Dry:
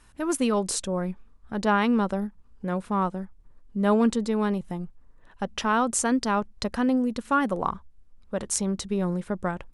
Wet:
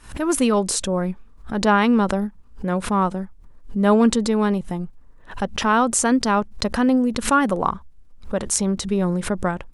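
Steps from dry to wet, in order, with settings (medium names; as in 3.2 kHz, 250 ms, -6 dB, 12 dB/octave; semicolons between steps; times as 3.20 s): swell ahead of each attack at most 140 dB/s; trim +5.5 dB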